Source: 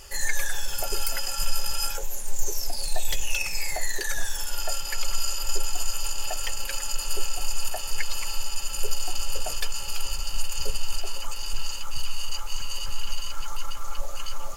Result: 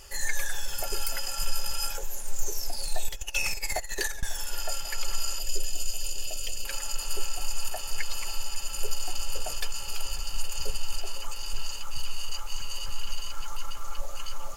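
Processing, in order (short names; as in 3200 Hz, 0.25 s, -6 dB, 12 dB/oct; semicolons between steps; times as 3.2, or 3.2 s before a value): 3.08–4.23 negative-ratio compressor -25 dBFS, ratio -0.5; 5.39–6.65 band shelf 1200 Hz -15 dB; tape echo 0.544 s, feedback 88%, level -17 dB, low-pass 2200 Hz; gain -3 dB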